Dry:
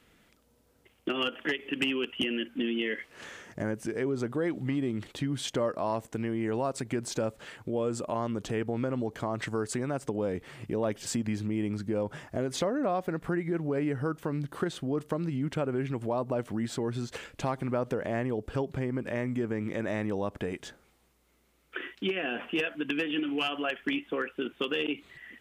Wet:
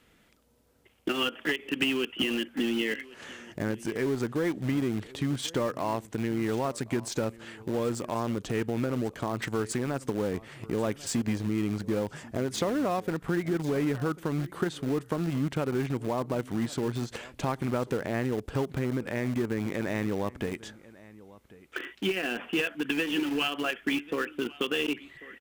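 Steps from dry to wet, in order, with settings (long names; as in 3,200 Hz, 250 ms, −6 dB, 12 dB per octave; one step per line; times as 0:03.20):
dynamic equaliser 610 Hz, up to −4 dB, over −43 dBFS, Q 2.6
single-tap delay 1,092 ms −18.5 dB
in parallel at −11.5 dB: bit reduction 5 bits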